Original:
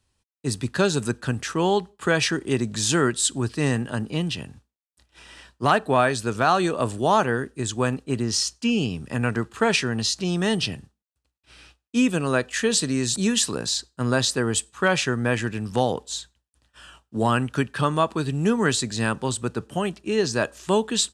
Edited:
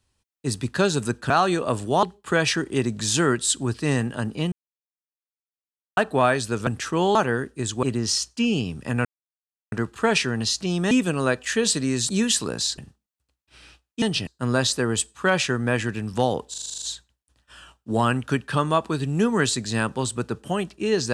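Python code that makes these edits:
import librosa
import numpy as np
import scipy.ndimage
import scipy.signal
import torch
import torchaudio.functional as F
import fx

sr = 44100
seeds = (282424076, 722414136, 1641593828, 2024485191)

y = fx.edit(x, sr, fx.swap(start_s=1.3, length_s=0.48, other_s=6.42, other_length_s=0.73),
    fx.silence(start_s=4.27, length_s=1.45),
    fx.cut(start_s=7.83, length_s=0.25),
    fx.insert_silence(at_s=9.3, length_s=0.67),
    fx.swap(start_s=10.49, length_s=0.25, other_s=11.98, other_length_s=1.87),
    fx.stutter(start_s=16.08, slice_s=0.04, count=9), tone=tone)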